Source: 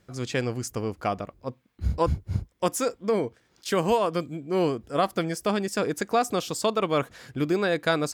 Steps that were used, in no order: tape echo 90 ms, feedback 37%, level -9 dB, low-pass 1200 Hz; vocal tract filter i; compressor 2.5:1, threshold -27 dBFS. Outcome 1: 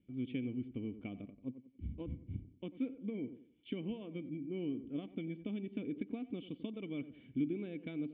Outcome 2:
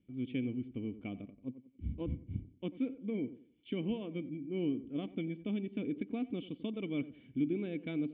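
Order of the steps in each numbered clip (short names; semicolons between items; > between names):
tape echo > compressor > vocal tract filter; tape echo > vocal tract filter > compressor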